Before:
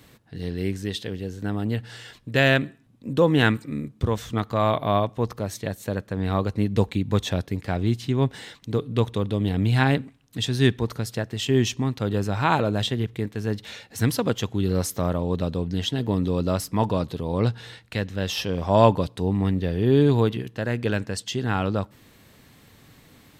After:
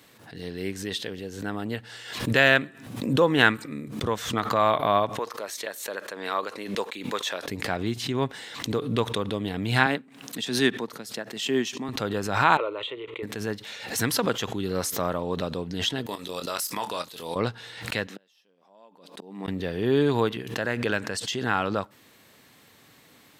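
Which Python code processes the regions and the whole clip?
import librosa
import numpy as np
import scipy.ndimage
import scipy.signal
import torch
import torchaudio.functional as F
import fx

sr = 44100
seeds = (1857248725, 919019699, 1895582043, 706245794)

y = fx.chain(x, sr, fx.highpass(hz=490.0, slope=12),
    fx.peak_eq(hz=750.0, db=-5.5, octaves=0.28), at=(5.19, 7.45))
y = fx.chain(y, sr, fx.highpass(hz=180.0, slope=24),
    fx.bass_treble(bass_db=5, treble_db=0),
    fx.upward_expand(threshold_db=-36.0, expansion=1.5), at=(9.86, 11.89))
y = fx.chain(y, sr, fx.bandpass_edges(low_hz=320.0, high_hz=2900.0),
    fx.fixed_phaser(hz=1100.0, stages=8), at=(12.57, 13.23))
y = fx.chain(y, sr, fx.tilt_eq(slope=4.0),
    fx.level_steps(step_db=15),
    fx.doubler(ms=24.0, db=-10), at=(16.06, 17.36))
y = fx.chain(y, sr, fx.gate_flip(shuts_db=-20.0, range_db=-36),
    fx.brickwall_highpass(low_hz=170.0), at=(18.07, 19.48))
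y = fx.highpass(y, sr, hz=380.0, slope=6)
y = fx.dynamic_eq(y, sr, hz=1400.0, q=1.2, threshold_db=-40.0, ratio=4.0, max_db=4)
y = fx.pre_swell(y, sr, db_per_s=72.0)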